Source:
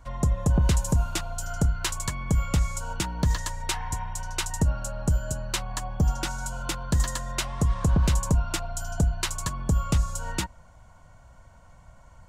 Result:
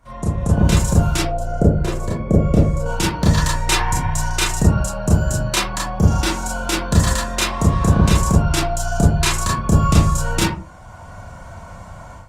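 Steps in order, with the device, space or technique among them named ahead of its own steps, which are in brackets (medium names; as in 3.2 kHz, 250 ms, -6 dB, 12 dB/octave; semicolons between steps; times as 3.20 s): 1.19–2.86 s: FFT filter 120 Hz 0 dB, 560 Hz +10 dB, 870 Hz -7 dB, 3.7 kHz -14 dB; far-field microphone of a smart speaker (reverberation RT60 0.35 s, pre-delay 26 ms, DRR -5.5 dB; high-pass 91 Hz 6 dB/octave; level rider gain up to 13 dB; trim -1 dB; Opus 32 kbps 48 kHz)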